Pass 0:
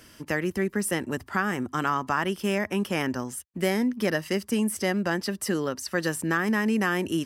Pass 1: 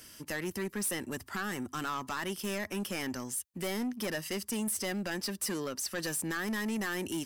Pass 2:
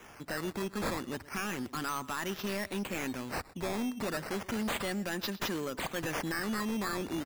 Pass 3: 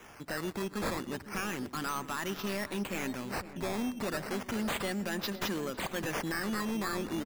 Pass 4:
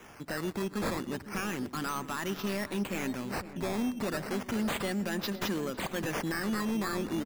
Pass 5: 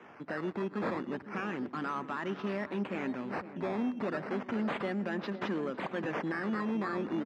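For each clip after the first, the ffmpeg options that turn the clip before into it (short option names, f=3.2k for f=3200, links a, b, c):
-af "highshelf=f=3.5k:g=11.5,asoftclip=type=tanh:threshold=-23dB,volume=-6dB"
-af "aecho=1:1:121:0.106,acrusher=samples=10:mix=1:aa=0.000001:lfo=1:lforange=10:lforate=0.33"
-filter_complex "[0:a]asplit=2[a][b];[b]adelay=507,lowpass=f=950:p=1,volume=-11dB,asplit=2[c][d];[d]adelay=507,lowpass=f=950:p=1,volume=0.5,asplit=2[e][f];[f]adelay=507,lowpass=f=950:p=1,volume=0.5,asplit=2[g][h];[h]adelay=507,lowpass=f=950:p=1,volume=0.5,asplit=2[i][j];[j]adelay=507,lowpass=f=950:p=1,volume=0.5[k];[a][c][e][g][i][k]amix=inputs=6:normalize=0"
-af "equalizer=f=200:w=0.56:g=3"
-af "highpass=180,lowpass=2.1k"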